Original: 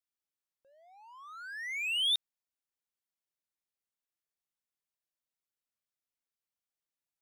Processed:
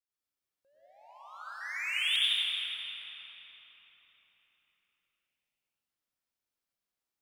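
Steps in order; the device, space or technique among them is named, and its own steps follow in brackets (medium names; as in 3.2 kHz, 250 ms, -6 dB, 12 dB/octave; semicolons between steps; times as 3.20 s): cathedral (reverberation RT60 4.7 s, pre-delay 83 ms, DRR -9.5 dB); 1.21–1.61 s: band-stop 1.8 kHz, Q 5.7; trim -6 dB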